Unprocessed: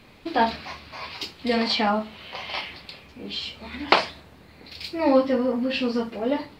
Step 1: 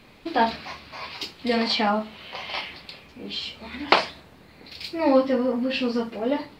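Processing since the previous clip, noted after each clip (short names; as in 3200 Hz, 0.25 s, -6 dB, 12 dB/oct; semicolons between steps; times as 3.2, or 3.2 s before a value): bell 82 Hz -4 dB 0.79 oct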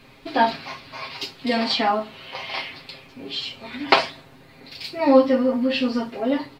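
comb 7.5 ms, depth 75%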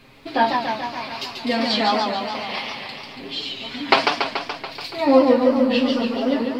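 warbling echo 0.143 s, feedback 69%, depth 160 cents, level -4.5 dB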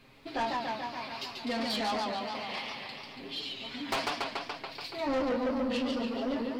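soft clip -18 dBFS, distortion -8 dB; gain -8.5 dB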